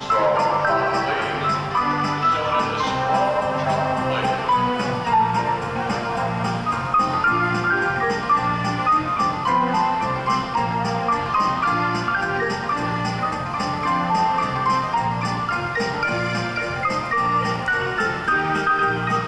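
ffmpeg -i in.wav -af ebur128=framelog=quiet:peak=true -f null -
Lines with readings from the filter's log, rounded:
Integrated loudness:
  I:         -20.9 LUFS
  Threshold: -30.9 LUFS
Loudness range:
  LRA:         1.8 LU
  Threshold: -41.0 LUFS
  LRA low:   -21.9 LUFS
  LRA high:  -20.1 LUFS
True peak:
  Peak:       -8.0 dBFS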